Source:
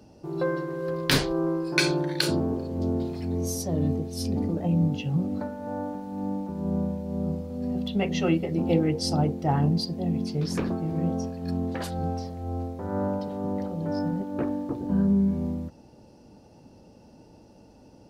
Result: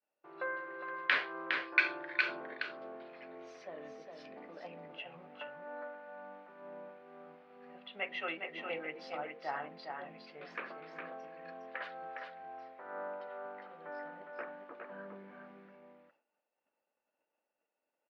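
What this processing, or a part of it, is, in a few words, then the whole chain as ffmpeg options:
bass cabinet: -af "agate=range=-33dB:threshold=-39dB:ratio=3:detection=peak,highpass=1500,highpass=85,equalizer=frequency=110:width_type=q:width=4:gain=-9,equalizer=frequency=570:width_type=q:width=4:gain=4,equalizer=frequency=880:width_type=q:width=4:gain=-5,lowpass=frequency=2300:width=0.5412,lowpass=frequency=2300:width=1.3066,aecho=1:1:410:0.562,volume=2.5dB"

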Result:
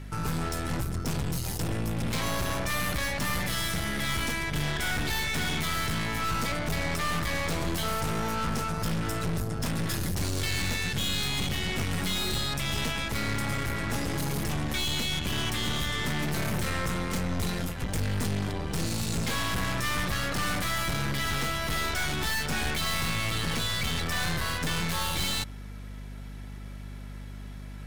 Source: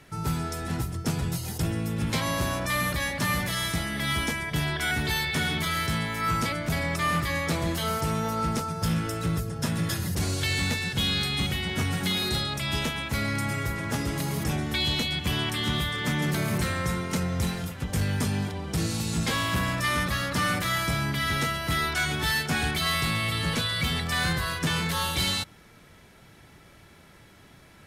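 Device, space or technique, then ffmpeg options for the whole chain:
valve amplifier with mains hum: -af "aeval=exprs='(tanh(50.1*val(0)+0.75)-tanh(0.75))/50.1':channel_layout=same,aeval=exprs='val(0)+0.00562*(sin(2*PI*50*n/s)+sin(2*PI*2*50*n/s)/2+sin(2*PI*3*50*n/s)/3+sin(2*PI*4*50*n/s)/4+sin(2*PI*5*50*n/s)/5)':channel_layout=same,volume=6dB"

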